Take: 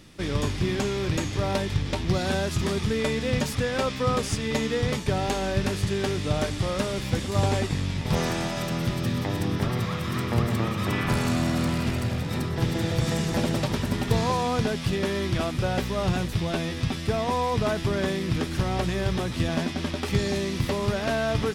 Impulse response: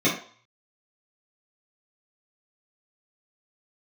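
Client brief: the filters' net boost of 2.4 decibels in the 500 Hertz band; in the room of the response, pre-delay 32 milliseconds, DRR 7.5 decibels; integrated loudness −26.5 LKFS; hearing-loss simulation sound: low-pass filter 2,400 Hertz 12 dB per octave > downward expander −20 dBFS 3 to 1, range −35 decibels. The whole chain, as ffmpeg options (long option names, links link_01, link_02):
-filter_complex "[0:a]equalizer=frequency=500:width_type=o:gain=3,asplit=2[link_01][link_02];[1:a]atrim=start_sample=2205,adelay=32[link_03];[link_02][link_03]afir=irnorm=-1:irlink=0,volume=-23dB[link_04];[link_01][link_04]amix=inputs=2:normalize=0,lowpass=2400,agate=range=-35dB:threshold=-20dB:ratio=3,volume=-1.5dB"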